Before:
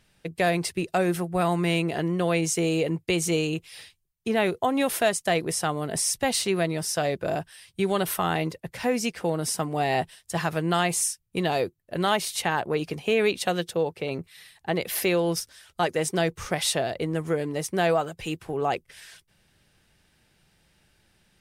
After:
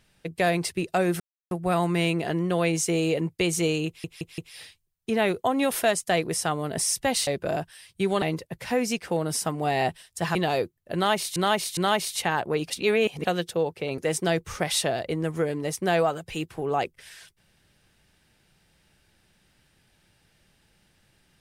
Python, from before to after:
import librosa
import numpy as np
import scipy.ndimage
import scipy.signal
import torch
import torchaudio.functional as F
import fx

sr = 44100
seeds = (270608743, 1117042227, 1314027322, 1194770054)

y = fx.edit(x, sr, fx.insert_silence(at_s=1.2, length_s=0.31),
    fx.stutter(start_s=3.56, slice_s=0.17, count=4),
    fx.cut(start_s=6.45, length_s=0.61),
    fx.cut(start_s=8.01, length_s=0.34),
    fx.cut(start_s=10.48, length_s=0.89),
    fx.repeat(start_s=11.97, length_s=0.41, count=3),
    fx.reverse_span(start_s=12.9, length_s=0.55),
    fx.cut(start_s=14.18, length_s=1.71), tone=tone)